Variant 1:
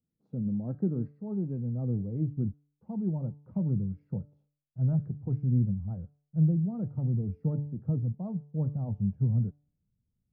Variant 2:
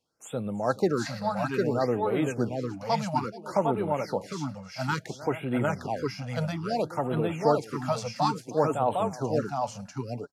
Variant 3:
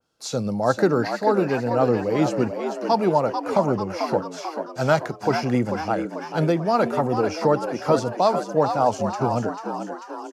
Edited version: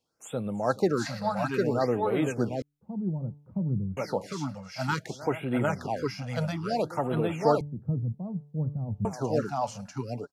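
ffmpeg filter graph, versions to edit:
ffmpeg -i take0.wav -i take1.wav -filter_complex "[0:a]asplit=2[link_01][link_02];[1:a]asplit=3[link_03][link_04][link_05];[link_03]atrim=end=2.622[link_06];[link_01]atrim=start=2.618:end=3.972[link_07];[link_04]atrim=start=3.968:end=7.612[link_08];[link_02]atrim=start=7.608:end=9.052[link_09];[link_05]atrim=start=9.048[link_10];[link_06][link_07]acrossfade=duration=0.004:curve1=hsin:curve2=hsin[link_11];[link_11][link_08]acrossfade=duration=0.004:curve1=hsin:curve2=hsin[link_12];[link_12][link_09]acrossfade=duration=0.004:curve1=hsin:curve2=hsin[link_13];[link_13][link_10]acrossfade=duration=0.004:curve1=hsin:curve2=hsin" out.wav

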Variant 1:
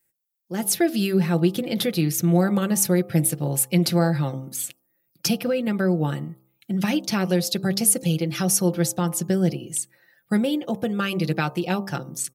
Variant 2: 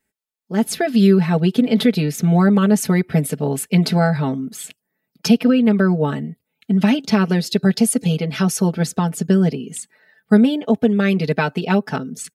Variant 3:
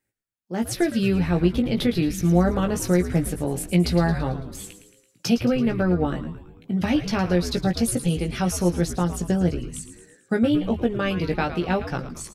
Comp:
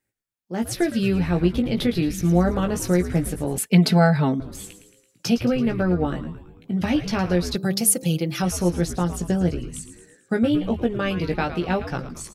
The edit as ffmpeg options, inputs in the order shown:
ffmpeg -i take0.wav -i take1.wav -i take2.wav -filter_complex "[2:a]asplit=3[link_01][link_02][link_03];[link_01]atrim=end=3.582[link_04];[1:a]atrim=start=3.578:end=4.402[link_05];[link_02]atrim=start=4.398:end=7.562[link_06];[0:a]atrim=start=7.558:end=8.422[link_07];[link_03]atrim=start=8.418[link_08];[link_04][link_05]acrossfade=duration=0.004:curve1=hsin:curve2=hsin[link_09];[link_09][link_06]acrossfade=duration=0.004:curve1=hsin:curve2=hsin[link_10];[link_10][link_07]acrossfade=duration=0.004:curve1=hsin:curve2=hsin[link_11];[link_11][link_08]acrossfade=duration=0.004:curve1=hsin:curve2=hsin" out.wav

